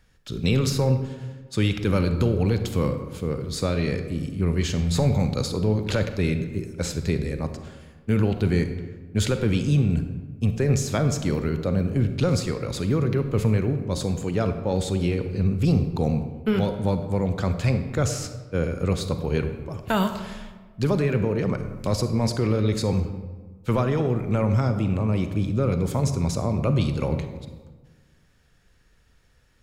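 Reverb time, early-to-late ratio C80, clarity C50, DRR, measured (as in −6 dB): 1.4 s, 10.5 dB, 9.0 dB, 8.0 dB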